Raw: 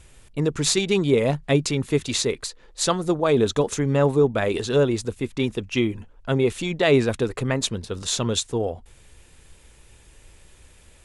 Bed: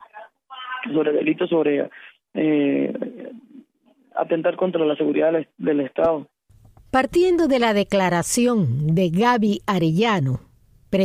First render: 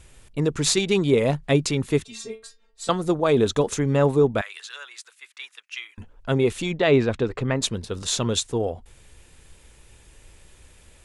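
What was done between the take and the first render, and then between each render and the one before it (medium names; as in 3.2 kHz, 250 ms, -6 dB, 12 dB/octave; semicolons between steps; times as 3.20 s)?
2.04–2.89 s: inharmonic resonator 220 Hz, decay 0.27 s, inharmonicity 0.002; 4.41–5.98 s: ladder high-pass 1.2 kHz, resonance 30%; 6.73–7.62 s: distance through air 120 m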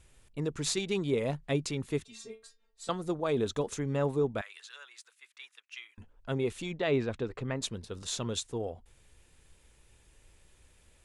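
trim -10.5 dB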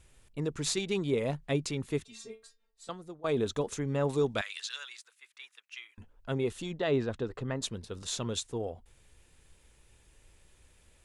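2.29–3.24 s: fade out, to -19 dB; 4.09–4.97 s: peaking EQ 5 kHz +13 dB 2.5 oct; 6.47–7.66 s: peaking EQ 2.3 kHz -9 dB 0.22 oct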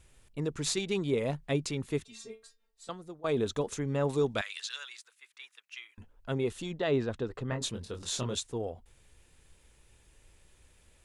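7.49–8.35 s: doubling 24 ms -4.5 dB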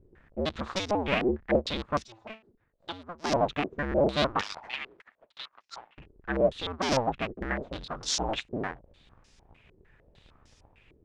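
cycle switcher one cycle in 2, inverted; step-sequenced low-pass 6.6 Hz 390–5500 Hz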